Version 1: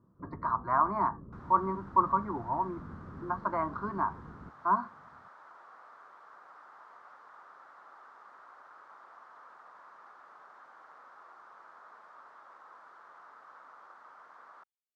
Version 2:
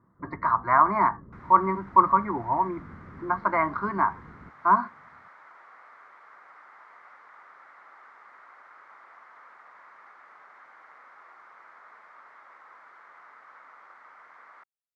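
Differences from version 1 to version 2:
speech +6.0 dB
master: add parametric band 2,100 Hz +15 dB 0.52 octaves

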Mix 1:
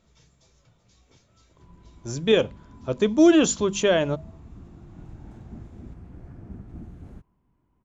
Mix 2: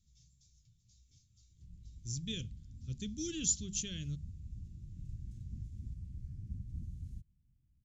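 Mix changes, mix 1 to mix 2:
speech −4.0 dB
master: add Chebyshev band-stop filter 110–5,500 Hz, order 2

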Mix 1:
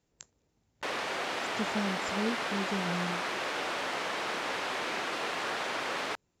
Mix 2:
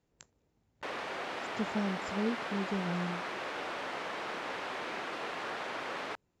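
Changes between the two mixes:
background −3.5 dB
master: add high-shelf EQ 4,100 Hz −9.5 dB

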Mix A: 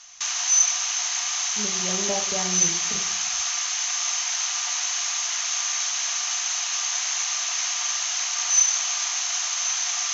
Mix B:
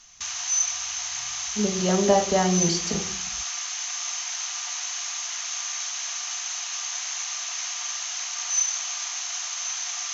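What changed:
speech +10.0 dB
background −5.0 dB

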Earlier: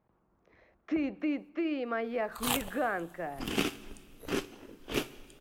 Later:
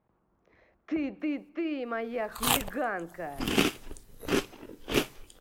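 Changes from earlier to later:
background +6.5 dB
reverb: off

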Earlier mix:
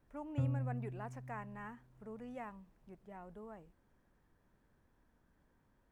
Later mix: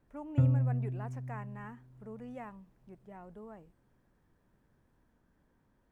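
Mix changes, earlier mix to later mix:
background +7.0 dB
master: add parametric band 230 Hz +3 dB 2.7 octaves

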